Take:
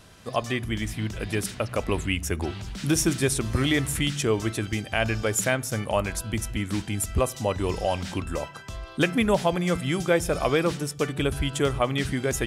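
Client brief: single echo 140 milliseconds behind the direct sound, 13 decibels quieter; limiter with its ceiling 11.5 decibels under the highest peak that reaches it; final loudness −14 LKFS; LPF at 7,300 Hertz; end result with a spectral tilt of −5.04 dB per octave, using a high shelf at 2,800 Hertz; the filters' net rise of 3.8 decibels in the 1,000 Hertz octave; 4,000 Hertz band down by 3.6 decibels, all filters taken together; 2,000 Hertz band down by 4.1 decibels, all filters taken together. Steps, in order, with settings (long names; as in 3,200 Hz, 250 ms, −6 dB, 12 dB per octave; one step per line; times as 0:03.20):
low-pass filter 7,300 Hz
parametric band 1,000 Hz +6.5 dB
parametric band 2,000 Hz −8 dB
high-shelf EQ 2,800 Hz +5.5 dB
parametric band 4,000 Hz −6.5 dB
brickwall limiter −19 dBFS
single-tap delay 140 ms −13 dB
level +15.5 dB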